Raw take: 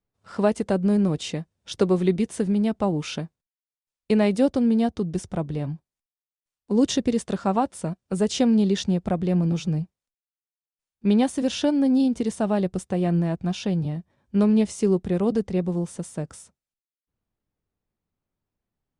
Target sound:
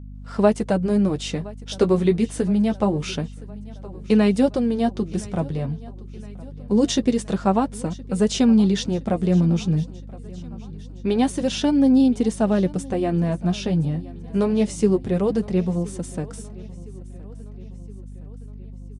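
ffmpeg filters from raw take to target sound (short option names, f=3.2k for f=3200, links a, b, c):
-af "flanger=delay=3.8:depth=9:regen=-29:speed=0.25:shape=sinusoidal,aecho=1:1:1017|2034|3051|4068:0.0891|0.0508|0.029|0.0165,aeval=exprs='val(0)+0.00794*(sin(2*PI*50*n/s)+sin(2*PI*2*50*n/s)/2+sin(2*PI*3*50*n/s)/3+sin(2*PI*4*50*n/s)/4+sin(2*PI*5*50*n/s)/5)':c=same,volume=6dB"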